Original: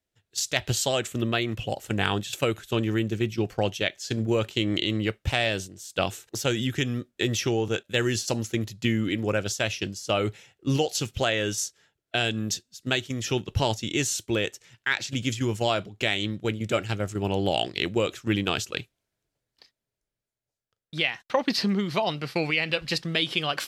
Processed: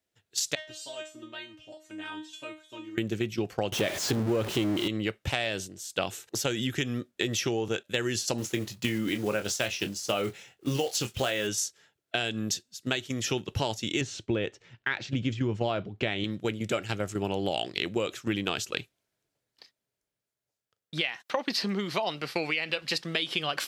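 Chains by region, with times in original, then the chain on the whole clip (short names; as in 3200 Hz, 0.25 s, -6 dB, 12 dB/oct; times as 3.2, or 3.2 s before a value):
0.55–2.98 LPF 8400 Hz + resonator 310 Hz, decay 0.31 s, mix 100%
3.72–4.88 zero-crossing step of -24.5 dBFS + tilt shelf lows +4.5 dB, about 1400 Hz
8.38–11.49 block floating point 5-bit + doubler 24 ms -9 dB
14.01–16.24 LPF 4400 Hz + tilt -2 dB/oct
21.01–23.35 HPF 250 Hz 6 dB/oct + upward compressor, threshold -39 dBFS
whole clip: HPF 150 Hz 6 dB/oct; compressor 4:1, threshold -27 dBFS; gain +1.5 dB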